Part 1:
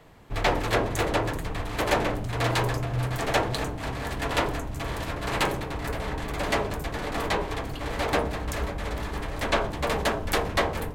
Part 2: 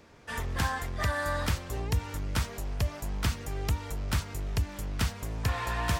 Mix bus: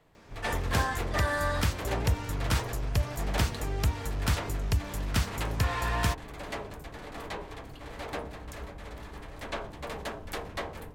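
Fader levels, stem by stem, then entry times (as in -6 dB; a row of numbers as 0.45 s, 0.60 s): -11.5 dB, +1.5 dB; 0.00 s, 0.15 s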